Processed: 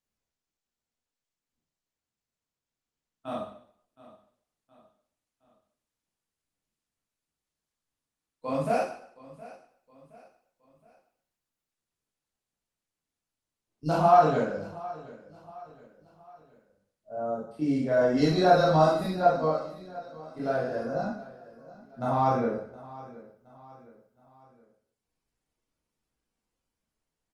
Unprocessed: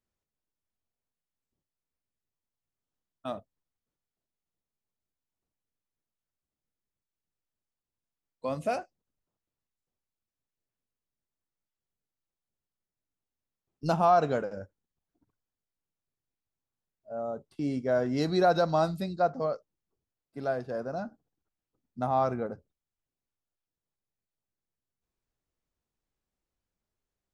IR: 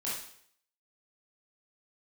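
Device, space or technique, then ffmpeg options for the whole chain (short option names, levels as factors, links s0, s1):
speakerphone in a meeting room: -filter_complex "[0:a]aecho=1:1:718|1436|2154:0.112|0.0494|0.0217[s0];[1:a]atrim=start_sample=2205[s1];[s0][s1]afir=irnorm=-1:irlink=0,dynaudnorm=f=650:g=9:m=1.68,volume=0.668" -ar 48000 -c:a libopus -b:a 24k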